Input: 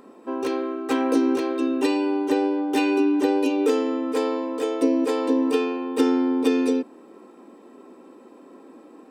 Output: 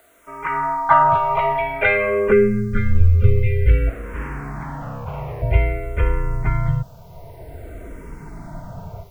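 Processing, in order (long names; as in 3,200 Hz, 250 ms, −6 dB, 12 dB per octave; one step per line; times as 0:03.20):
high-pass filter sweep 1,400 Hz → 91 Hz, 0:01.94–0:03.79
automatic gain control gain up to 15 dB
0:03.89–0:05.42: tube saturation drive 26 dB, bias 0.4
single-sideband voice off tune −380 Hz 340–2,700 Hz
bit-depth reduction 10 bits, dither triangular
0:02.32–0:03.87: time-frequency box erased 550–1,200 Hz
frequency shifter mixed with the dry sound −0.52 Hz
level +4 dB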